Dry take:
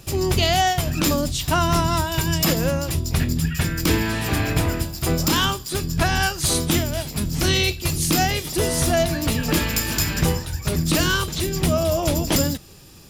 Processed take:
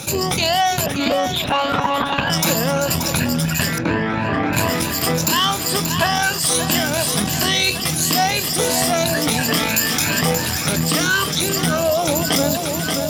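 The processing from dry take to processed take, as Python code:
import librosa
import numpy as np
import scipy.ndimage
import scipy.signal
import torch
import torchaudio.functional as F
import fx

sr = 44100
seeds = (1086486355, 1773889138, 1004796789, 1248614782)

y = fx.spec_ripple(x, sr, per_octave=1.4, drift_hz=2.9, depth_db=12)
y = fx.lpc_monotone(y, sr, seeds[0], pitch_hz=280.0, order=10, at=(0.86, 2.3))
y = fx.echo_feedback(y, sr, ms=580, feedback_pct=52, wet_db=-12.5)
y = fx.rider(y, sr, range_db=5, speed_s=0.5)
y = fx.lowpass(y, sr, hz=1700.0, slope=12, at=(3.78, 4.53))
y = fx.tube_stage(y, sr, drive_db=7.0, bias=0.65)
y = scipy.signal.sosfilt(scipy.signal.butter(2, 180.0, 'highpass', fs=sr, output='sos'), y)
y = fx.peak_eq(y, sr, hz=360.0, db=-8.0, octaves=0.34)
y = fx.env_flatten(y, sr, amount_pct=50)
y = y * 10.0 ** (3.5 / 20.0)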